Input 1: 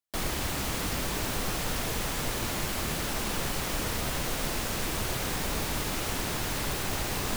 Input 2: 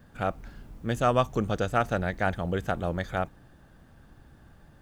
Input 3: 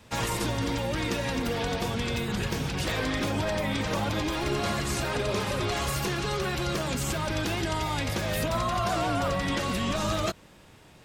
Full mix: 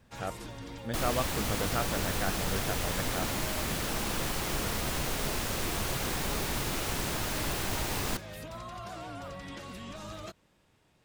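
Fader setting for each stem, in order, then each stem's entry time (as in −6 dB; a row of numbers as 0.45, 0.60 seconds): −1.5, −8.0, −14.5 decibels; 0.80, 0.00, 0.00 seconds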